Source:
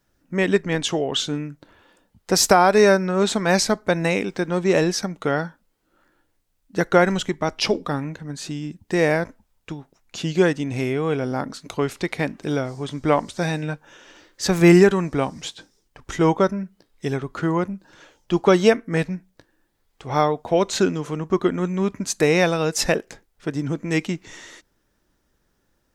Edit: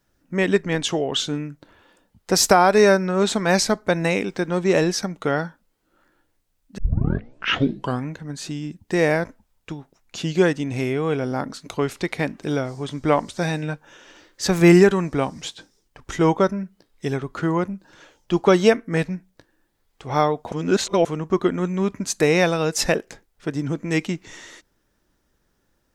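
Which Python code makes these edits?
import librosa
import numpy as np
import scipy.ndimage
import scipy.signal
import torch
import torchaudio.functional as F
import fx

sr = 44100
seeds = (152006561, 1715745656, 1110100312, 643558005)

y = fx.edit(x, sr, fx.tape_start(start_s=6.78, length_s=1.3),
    fx.reverse_span(start_s=20.52, length_s=0.53), tone=tone)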